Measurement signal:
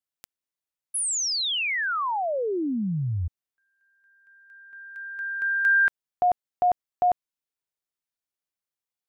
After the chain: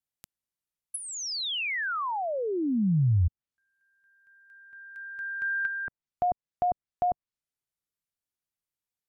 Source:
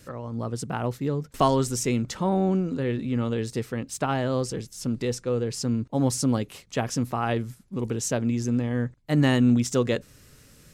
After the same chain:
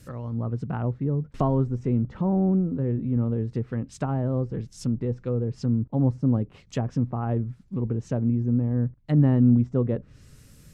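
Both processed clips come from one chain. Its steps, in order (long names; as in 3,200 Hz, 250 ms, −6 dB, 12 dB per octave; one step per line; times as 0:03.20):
bass and treble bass +9 dB, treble −2 dB
treble cut that deepens with the level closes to 890 Hz, closed at −18.5 dBFS
high-shelf EQ 6,200 Hz +7 dB
level −4 dB
AAC 192 kbit/s 48,000 Hz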